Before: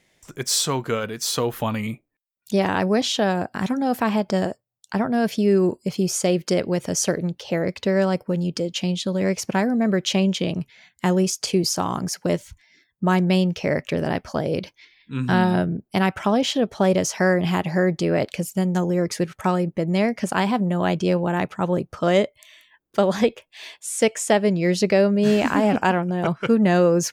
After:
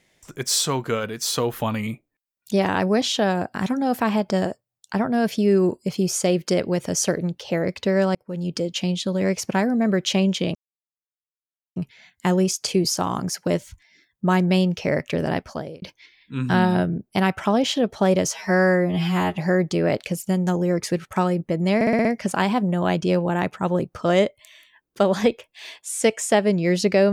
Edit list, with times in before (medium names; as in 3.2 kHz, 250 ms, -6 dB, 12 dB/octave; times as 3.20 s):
8.15–8.55 s: fade in
10.55 s: insert silence 1.21 s
14.17–14.61 s: fade out
17.13–17.64 s: stretch 2×
20.03 s: stutter 0.06 s, 6 plays